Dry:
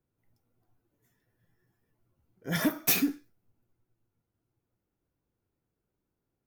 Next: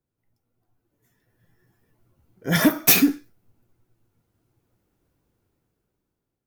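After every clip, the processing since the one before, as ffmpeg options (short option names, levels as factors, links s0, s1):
-af "dynaudnorm=f=370:g=7:m=5.01,volume=0.841"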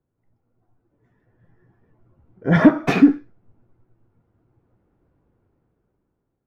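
-af "lowpass=1400,volume=2.11"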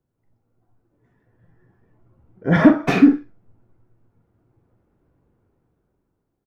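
-filter_complex "[0:a]asplit=2[s0][s1];[s1]adelay=44,volume=0.398[s2];[s0][s2]amix=inputs=2:normalize=0"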